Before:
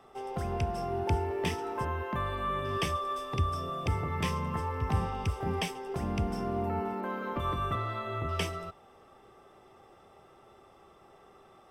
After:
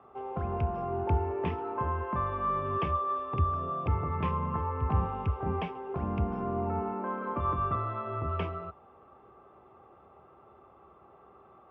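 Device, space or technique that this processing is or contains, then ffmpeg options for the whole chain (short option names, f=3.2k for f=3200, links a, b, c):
bass cabinet: -af "highpass=62,equalizer=f=70:t=q:w=4:g=8,equalizer=f=1.1k:t=q:w=4:g=5,equalizer=f=1.9k:t=q:w=4:g=-9,lowpass=f=2.3k:w=0.5412,lowpass=f=2.3k:w=1.3066"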